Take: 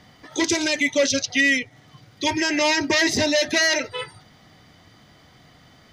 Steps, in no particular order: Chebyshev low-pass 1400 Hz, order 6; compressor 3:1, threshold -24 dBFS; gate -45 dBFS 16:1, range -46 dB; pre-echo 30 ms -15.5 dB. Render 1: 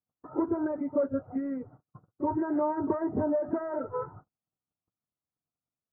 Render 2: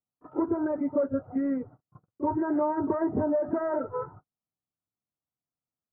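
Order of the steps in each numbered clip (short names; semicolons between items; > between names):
pre-echo > compressor > gate > Chebyshev low-pass; Chebyshev low-pass > gate > pre-echo > compressor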